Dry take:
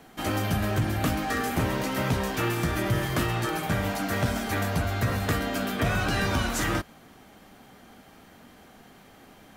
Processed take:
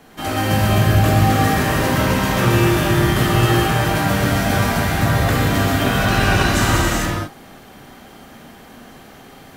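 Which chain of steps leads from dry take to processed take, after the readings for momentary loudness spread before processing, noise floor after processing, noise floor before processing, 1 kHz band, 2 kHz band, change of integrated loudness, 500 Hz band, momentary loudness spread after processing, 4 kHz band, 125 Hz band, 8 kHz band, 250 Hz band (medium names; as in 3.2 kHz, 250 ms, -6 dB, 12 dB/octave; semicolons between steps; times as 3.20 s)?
2 LU, -43 dBFS, -53 dBFS, +11.0 dB, +10.0 dB, +10.5 dB, +10.0 dB, 4 LU, +11.0 dB, +12.0 dB, +10.0 dB, +10.0 dB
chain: gated-style reverb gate 490 ms flat, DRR -6.5 dB; trim +3 dB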